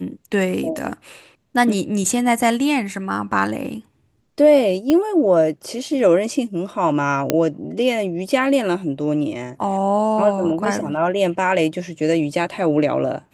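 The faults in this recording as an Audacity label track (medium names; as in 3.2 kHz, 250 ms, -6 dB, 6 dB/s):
4.900000	4.900000	pop -6 dBFS
7.300000	7.300000	pop -2 dBFS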